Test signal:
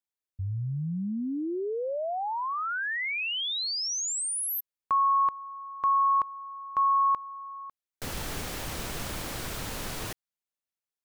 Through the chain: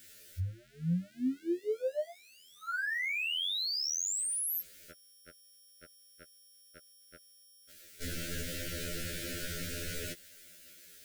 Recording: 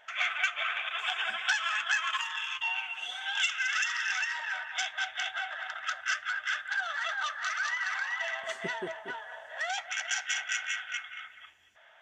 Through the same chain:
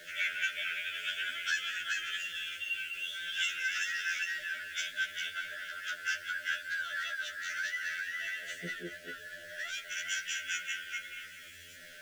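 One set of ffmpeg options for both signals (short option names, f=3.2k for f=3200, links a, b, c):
-af "aeval=exprs='val(0)+0.5*0.00841*sgn(val(0))':c=same,asuperstop=centerf=940:order=20:qfactor=1.3,afftfilt=real='re*2*eq(mod(b,4),0)':imag='im*2*eq(mod(b,4),0)':win_size=2048:overlap=0.75,volume=-2dB"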